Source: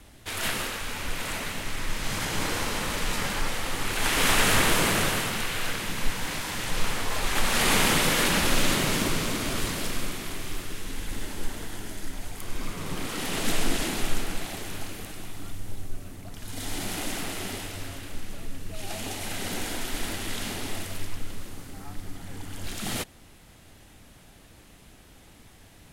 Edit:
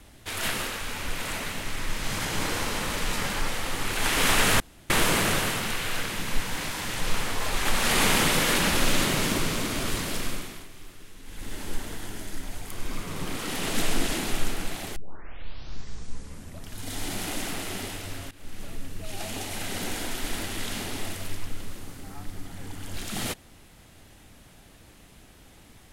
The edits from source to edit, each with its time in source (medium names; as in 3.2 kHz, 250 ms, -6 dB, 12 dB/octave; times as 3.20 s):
4.60 s: insert room tone 0.30 s
9.96–11.35 s: dip -12 dB, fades 0.42 s
14.66 s: tape start 1.75 s
18.01–18.34 s: fade in linear, from -18 dB